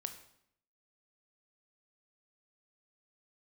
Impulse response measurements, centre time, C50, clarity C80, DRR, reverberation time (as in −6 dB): 12 ms, 10.5 dB, 13.5 dB, 7.0 dB, 0.70 s